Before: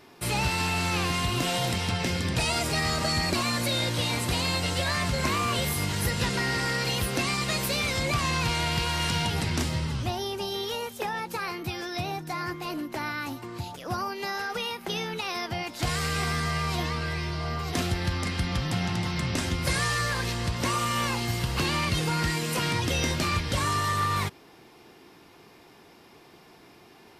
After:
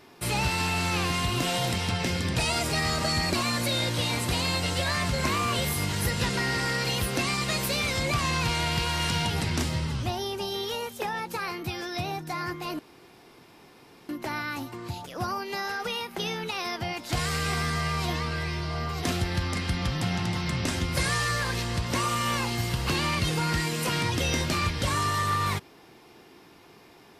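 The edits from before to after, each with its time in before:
12.79 insert room tone 1.30 s

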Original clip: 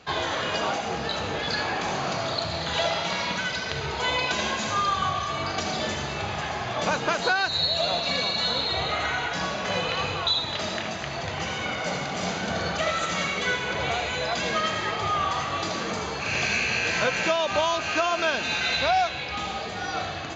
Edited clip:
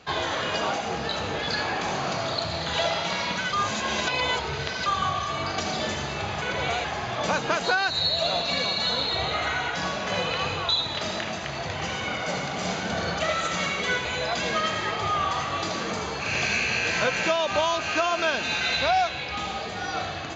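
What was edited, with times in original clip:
3.53–4.86 reverse
13.63–14.05 move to 6.42

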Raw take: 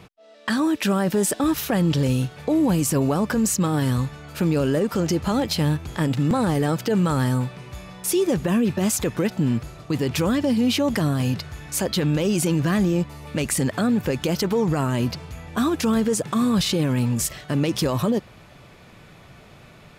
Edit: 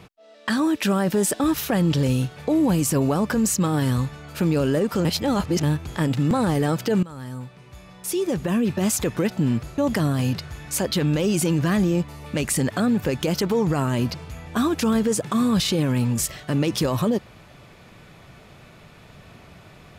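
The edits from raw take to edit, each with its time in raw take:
5.05–5.63 reverse
7.03–8.9 fade in, from -19.5 dB
9.78–10.79 cut

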